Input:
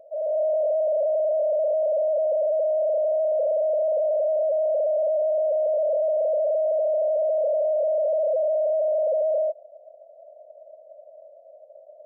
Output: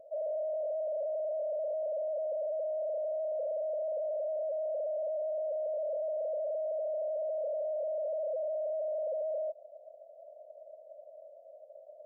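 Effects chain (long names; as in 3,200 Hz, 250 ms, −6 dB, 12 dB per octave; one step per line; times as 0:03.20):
low-shelf EQ 460 Hz +7 dB
downward compressor 6 to 1, threshold −26 dBFS, peak gain reduction 7.5 dB
level −7 dB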